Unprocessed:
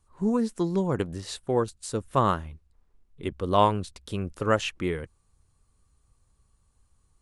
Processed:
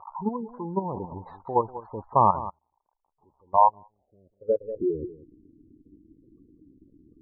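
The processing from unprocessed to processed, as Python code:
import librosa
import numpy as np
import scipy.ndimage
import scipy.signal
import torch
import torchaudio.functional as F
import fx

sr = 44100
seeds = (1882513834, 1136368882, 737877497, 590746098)

y = x + 0.5 * 10.0 ** (-12.5 / 20.0) * np.diff(np.sign(x), prepend=np.sign(x[:1]))
y = fx.high_shelf(y, sr, hz=5100.0, db=-4.0)
y = fx.level_steps(y, sr, step_db=11)
y = fx.filter_sweep_lowpass(y, sr, from_hz=910.0, to_hz=300.0, start_s=3.62, end_s=5.21, q=5.8)
y = fx.spec_gate(y, sr, threshold_db=-15, keep='strong')
y = fx.air_absorb(y, sr, metres=280.0)
y = y + 10.0 ** (-15.0 / 20.0) * np.pad(y, (int(191 * sr / 1000.0), 0))[:len(y)]
y = fx.upward_expand(y, sr, threshold_db=-31.0, expansion=2.5, at=(2.49, 4.6), fade=0.02)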